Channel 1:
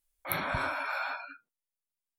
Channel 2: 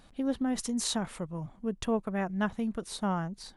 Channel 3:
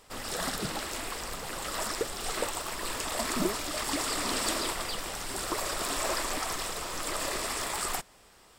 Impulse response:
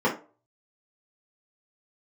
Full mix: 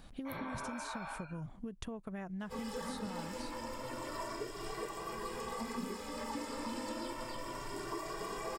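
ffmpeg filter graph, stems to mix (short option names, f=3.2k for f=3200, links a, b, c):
-filter_complex "[0:a]volume=-8dB,asplit=2[a][b];[b]volume=-11.5dB[c];[1:a]acompressor=threshold=-36dB:ratio=6,volume=0dB[d];[2:a]asplit=2[e][f];[f]adelay=2,afreqshift=0.3[g];[e][g]amix=inputs=2:normalize=1,adelay=2400,volume=-8.5dB,asplit=2[h][i];[i]volume=-5dB[j];[3:a]atrim=start_sample=2205[k];[c][j]amix=inputs=2:normalize=0[l];[l][k]afir=irnorm=-1:irlink=0[m];[a][d][h][m]amix=inputs=4:normalize=0,lowshelf=f=160:g=5,acrossover=split=1700|4800[n][o][p];[n]acompressor=threshold=-40dB:ratio=4[q];[o]acompressor=threshold=-53dB:ratio=4[r];[p]acompressor=threshold=-53dB:ratio=4[s];[q][r][s]amix=inputs=3:normalize=0"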